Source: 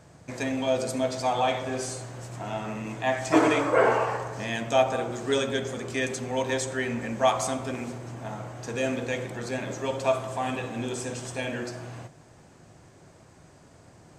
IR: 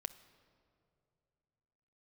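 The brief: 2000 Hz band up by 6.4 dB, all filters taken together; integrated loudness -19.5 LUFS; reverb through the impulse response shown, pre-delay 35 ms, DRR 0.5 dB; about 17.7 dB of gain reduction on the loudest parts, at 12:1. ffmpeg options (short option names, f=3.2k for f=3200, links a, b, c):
-filter_complex "[0:a]equalizer=f=2k:t=o:g=8,acompressor=threshold=-33dB:ratio=12,asplit=2[a][b];[1:a]atrim=start_sample=2205,adelay=35[c];[b][c]afir=irnorm=-1:irlink=0,volume=2.5dB[d];[a][d]amix=inputs=2:normalize=0,volume=15dB"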